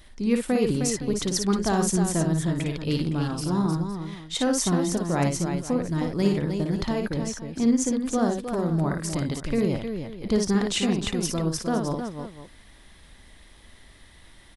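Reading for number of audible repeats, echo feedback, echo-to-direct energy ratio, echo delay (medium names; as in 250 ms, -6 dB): 3, no regular repeats, -2.5 dB, 56 ms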